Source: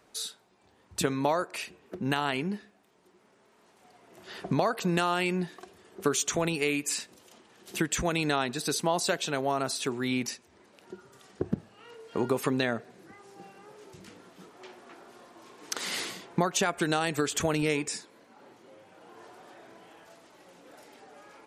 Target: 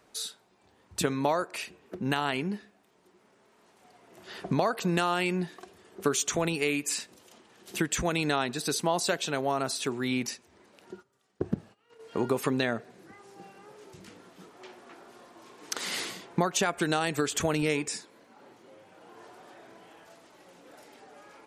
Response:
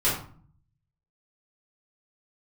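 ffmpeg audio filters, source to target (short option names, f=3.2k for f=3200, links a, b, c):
-filter_complex "[0:a]asplit=3[a][b][c];[a]afade=t=out:st=10.94:d=0.02[d];[b]agate=range=-18dB:threshold=-47dB:ratio=16:detection=peak,afade=t=in:st=10.94:d=0.02,afade=t=out:st=12:d=0.02[e];[c]afade=t=in:st=12:d=0.02[f];[d][e][f]amix=inputs=3:normalize=0"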